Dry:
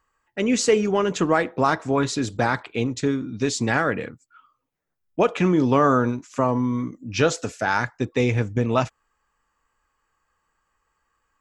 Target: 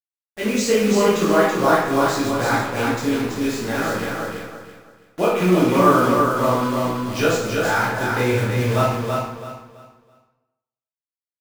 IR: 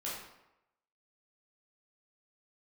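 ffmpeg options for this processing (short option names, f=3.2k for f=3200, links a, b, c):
-filter_complex "[0:a]asettb=1/sr,asplit=3[a][b][c];[a]atrim=end=3.354[d];[b]atrim=start=3.35:end=4.02,asetpts=PTS-STARTPTS,afade=t=in:d=0.004:c=qsin,afade=t=out:st=0.666:d=0.004:c=qsin,acrossover=split=160|1300[e][f][g];[e]acompressor=threshold=-38dB:ratio=4[h];[f]acompressor=threshold=-23dB:ratio=4[i];[g]acompressor=threshold=-32dB:ratio=4[j];[h][i][j]amix=inputs=3:normalize=0[k];[c]atrim=start=4.016[l];[d][k]acrossfade=d=0.004:c1=hsin:c2=qsin[m];[m][l]acrossfade=d=0.004:c1=qsin:c2=hsin,acrusher=bits=6:dc=4:mix=0:aa=0.000001,aecho=1:1:330|660|990|1320:0.631|0.177|0.0495|0.0139[n];[1:a]atrim=start_sample=2205[o];[n][o]afir=irnorm=-1:irlink=0"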